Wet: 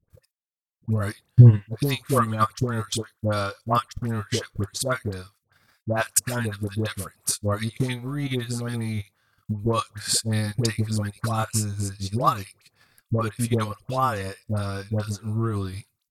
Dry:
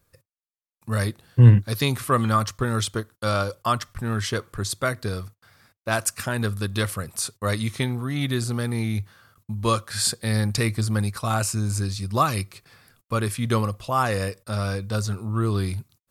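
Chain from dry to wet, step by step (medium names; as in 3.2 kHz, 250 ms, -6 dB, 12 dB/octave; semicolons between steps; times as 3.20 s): phase dispersion highs, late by 102 ms, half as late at 830 Hz; transient shaper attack +9 dB, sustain -10 dB; trim -3.5 dB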